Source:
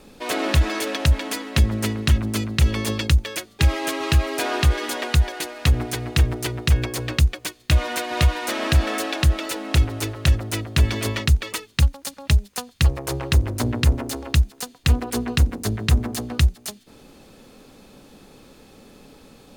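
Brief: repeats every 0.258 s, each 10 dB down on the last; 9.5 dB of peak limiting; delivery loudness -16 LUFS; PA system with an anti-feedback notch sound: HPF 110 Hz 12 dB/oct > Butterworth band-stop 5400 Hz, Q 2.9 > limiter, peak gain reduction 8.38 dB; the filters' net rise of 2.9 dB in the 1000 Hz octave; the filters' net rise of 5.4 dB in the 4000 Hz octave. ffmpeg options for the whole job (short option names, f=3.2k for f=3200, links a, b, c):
-af "equalizer=f=1k:t=o:g=3.5,equalizer=f=4k:t=o:g=7,alimiter=limit=-12.5dB:level=0:latency=1,highpass=110,asuperstop=centerf=5400:order=8:qfactor=2.9,aecho=1:1:258|516|774|1032:0.316|0.101|0.0324|0.0104,volume=13.5dB,alimiter=limit=-6dB:level=0:latency=1"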